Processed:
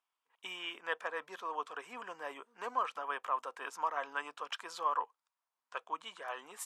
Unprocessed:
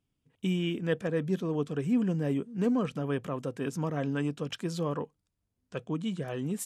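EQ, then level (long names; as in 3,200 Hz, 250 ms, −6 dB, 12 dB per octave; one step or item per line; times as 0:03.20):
four-pole ladder high-pass 880 Hz, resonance 55%
spectral tilt −2 dB per octave
+10.5 dB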